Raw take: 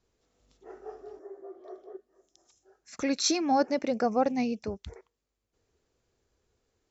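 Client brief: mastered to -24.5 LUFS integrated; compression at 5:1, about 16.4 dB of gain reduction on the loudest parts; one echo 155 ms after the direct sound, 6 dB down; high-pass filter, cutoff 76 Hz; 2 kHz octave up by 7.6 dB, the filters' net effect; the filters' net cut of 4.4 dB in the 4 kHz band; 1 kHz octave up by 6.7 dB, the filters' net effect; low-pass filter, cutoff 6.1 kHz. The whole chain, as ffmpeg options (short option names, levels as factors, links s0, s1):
-af "highpass=76,lowpass=6100,equalizer=f=1000:t=o:g=8.5,equalizer=f=2000:t=o:g=8.5,equalizer=f=4000:t=o:g=-6,acompressor=threshold=0.02:ratio=5,aecho=1:1:155:0.501,volume=5.01"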